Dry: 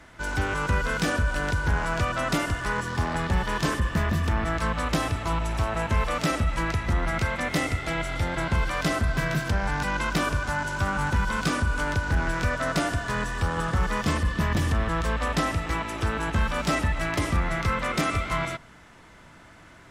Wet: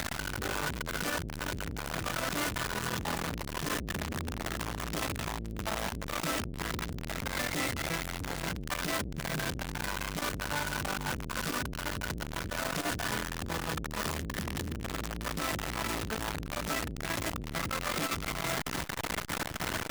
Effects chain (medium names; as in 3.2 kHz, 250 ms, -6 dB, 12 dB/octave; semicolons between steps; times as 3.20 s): one-bit comparator; transformer saturation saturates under 180 Hz; trim -3.5 dB